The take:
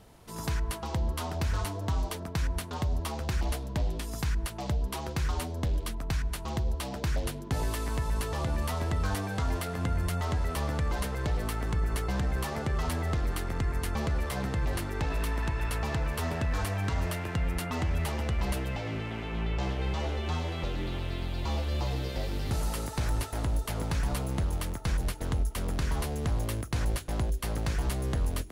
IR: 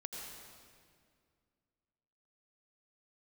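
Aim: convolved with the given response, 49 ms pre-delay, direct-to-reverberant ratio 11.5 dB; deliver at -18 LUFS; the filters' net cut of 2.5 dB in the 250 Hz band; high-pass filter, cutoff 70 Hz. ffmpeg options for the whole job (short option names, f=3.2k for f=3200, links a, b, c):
-filter_complex "[0:a]highpass=70,equalizer=f=250:t=o:g=-3.5,asplit=2[a][b];[1:a]atrim=start_sample=2205,adelay=49[c];[b][c]afir=irnorm=-1:irlink=0,volume=-10dB[d];[a][d]amix=inputs=2:normalize=0,volume=16dB"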